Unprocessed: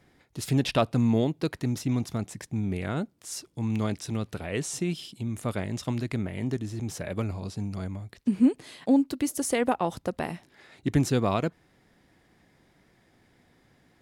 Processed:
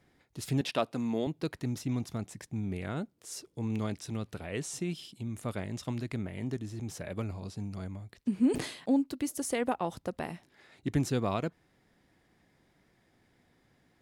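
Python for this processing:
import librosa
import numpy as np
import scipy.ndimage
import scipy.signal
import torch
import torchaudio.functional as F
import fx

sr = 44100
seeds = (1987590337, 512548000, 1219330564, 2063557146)

y = fx.highpass(x, sr, hz=230.0, slope=12, at=(0.61, 1.27))
y = fx.peak_eq(y, sr, hz=440.0, db=8.5, octaves=0.66, at=(3.17, 3.79))
y = fx.sustainer(y, sr, db_per_s=84.0, at=(8.46, 8.98))
y = y * librosa.db_to_amplitude(-5.5)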